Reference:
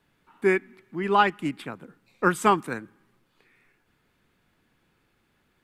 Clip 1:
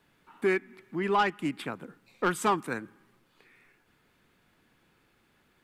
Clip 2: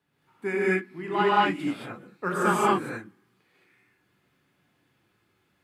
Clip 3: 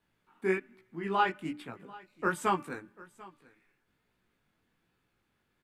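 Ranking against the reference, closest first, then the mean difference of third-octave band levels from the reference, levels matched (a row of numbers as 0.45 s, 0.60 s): 3, 1, 2; 2.0 dB, 3.0 dB, 9.5 dB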